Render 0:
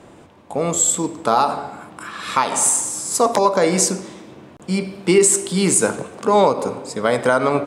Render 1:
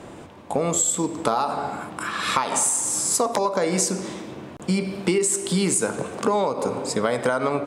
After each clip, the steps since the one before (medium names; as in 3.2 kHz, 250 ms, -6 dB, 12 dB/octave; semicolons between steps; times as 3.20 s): compression 6:1, threshold -23 dBFS, peak gain reduction 13.5 dB; trim +4 dB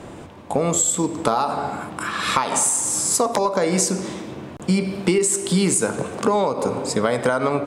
bass shelf 130 Hz +5 dB; trim +2 dB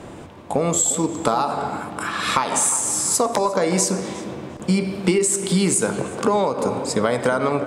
tape echo 355 ms, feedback 46%, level -12 dB, low-pass 2.3 kHz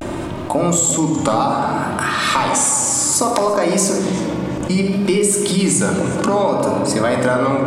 simulated room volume 3200 m³, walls furnished, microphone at 2.6 m; vibrato 0.62 Hz 82 cents; level flattener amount 50%; trim -1 dB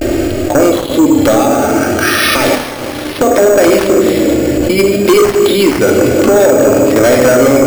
static phaser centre 410 Hz, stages 4; sine folder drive 11 dB, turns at -3 dBFS; careless resampling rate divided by 6×, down filtered, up hold